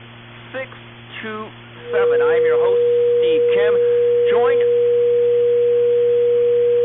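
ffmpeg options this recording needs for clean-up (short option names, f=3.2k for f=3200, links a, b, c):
-af "bandreject=f=117.3:t=h:w=4,bandreject=f=234.6:t=h:w=4,bandreject=f=351.9:t=h:w=4,bandreject=f=480:w=30,afwtdn=0.02"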